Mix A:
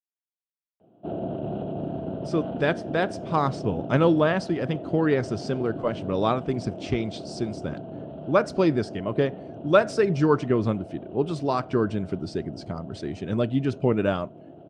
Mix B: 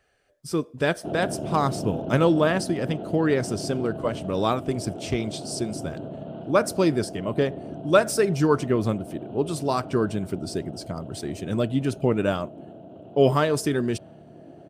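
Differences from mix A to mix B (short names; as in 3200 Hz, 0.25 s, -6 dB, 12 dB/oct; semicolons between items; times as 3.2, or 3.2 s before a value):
speech: entry -1.80 s; master: remove Gaussian blur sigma 1.6 samples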